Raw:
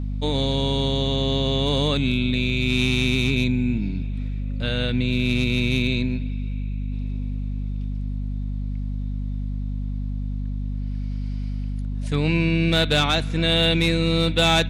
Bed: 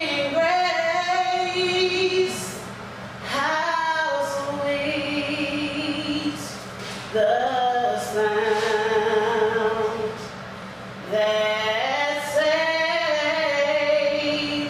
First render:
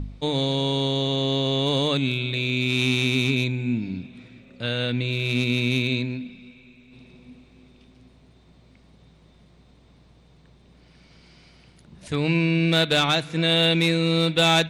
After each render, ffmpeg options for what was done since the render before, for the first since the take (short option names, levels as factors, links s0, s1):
-af "bandreject=f=50:t=h:w=4,bandreject=f=100:t=h:w=4,bandreject=f=150:t=h:w=4,bandreject=f=200:t=h:w=4,bandreject=f=250:t=h:w=4"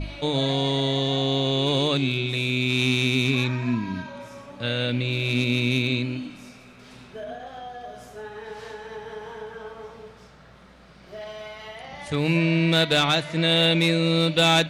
-filter_complex "[1:a]volume=0.15[s0];[0:a][s0]amix=inputs=2:normalize=0"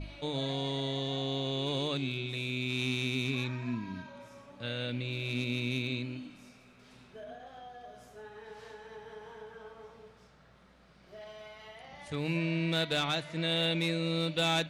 -af "volume=0.299"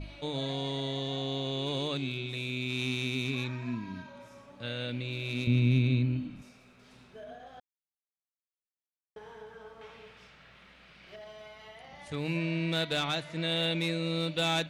-filter_complex "[0:a]asettb=1/sr,asplit=3[s0][s1][s2];[s0]atrim=end=5.474[s3];[s1]atrim=start=5.47:end=6.42,asetpts=PTS-STARTPTS,afade=t=in:d=0.004:c=qsin,afade=t=out:st=0.946:d=0.004:c=qsin,bass=f=250:g=14,treble=f=4000:g=-8[s4];[s2]atrim=start=6.416[s5];[s3][s4]acrossfade=d=0.004:c1=hsin:c2=qsin[s6];[s6][s5]acrossfade=d=0.004:c1=qsin:c2=hsin,asettb=1/sr,asplit=3[s7][s8][s9];[s7]atrim=end=9.814[s10];[s8]atrim=start=9.81:end=11.16,asetpts=PTS-STARTPTS,afade=t=in:d=0.004:c=qsin,afade=t=out:st=1.346:d=0.004:c=qsin,equalizer=f=2600:t=o:w=1.4:g=14.5[s11];[s9]atrim=start=11.156[s12];[s10][s11]acrossfade=d=0.004:c1=hsin:c2=qsin[s13];[s13][s12]acrossfade=d=0.004:c1=qsin:c2=hsin,asplit=3[s14][s15][s16];[s14]atrim=end=7.6,asetpts=PTS-STARTPTS,afade=t=out:st=7.596:d=0.004:c=hsin[s17];[s15]atrim=start=7.6:end=9.16,asetpts=PTS-STARTPTS,volume=0[s18];[s16]atrim=start=9.16,asetpts=PTS-STARTPTS,afade=t=in:d=0.004:c=hsin[s19];[s17][s18][s19]concat=n=3:v=0:a=1"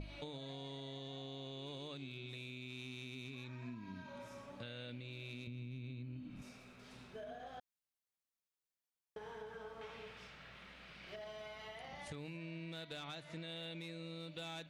-af "alimiter=level_in=1.58:limit=0.0631:level=0:latency=1:release=376,volume=0.631,acompressor=threshold=0.00562:ratio=6"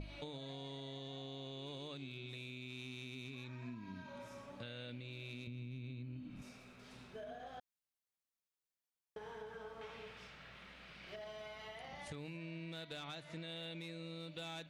-af anull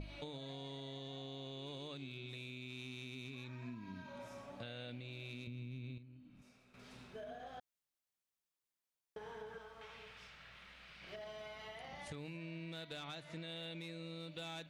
-filter_complex "[0:a]asettb=1/sr,asplit=3[s0][s1][s2];[s0]atrim=end=4.194[s3];[s1]atrim=start=4.19:end=5.28,asetpts=PTS-STARTPTS,afade=t=in:d=0.004:c=qsin,afade=t=out:st=1.086:d=0.004:c=qsin,equalizer=f=710:t=o:w=0.22:g=10[s4];[s2]atrim=start=5.276[s5];[s3][s4]acrossfade=d=0.004:c1=hsin:c2=qsin[s6];[s6][s5]acrossfade=d=0.004:c1=qsin:c2=hsin,asettb=1/sr,asplit=3[s7][s8][s9];[s7]atrim=end=9.584[s10];[s8]atrim=start=9.58:end=11.02,asetpts=PTS-STARTPTS,afade=t=in:d=0.004:c=qsin,afade=t=out:st=1.436:d=0.004:c=qsin,equalizer=f=290:t=o:w=2.7:g=-8[s11];[s9]atrim=start=11.016[s12];[s10][s11]acrossfade=d=0.004:c1=hsin:c2=qsin[s13];[s13][s12]acrossfade=d=0.004:c1=qsin:c2=hsin,asplit=3[s14][s15][s16];[s14]atrim=end=5.982[s17];[s15]atrim=start=5.978:end=6.742,asetpts=PTS-STARTPTS,volume=0.299[s18];[s16]atrim=start=6.738[s19];[s17][s18]acrossfade=d=0.004:c1=hsin:c2=hsin[s20];[s20][s19]acrossfade=d=0.004:c1=hsin:c2=hsin"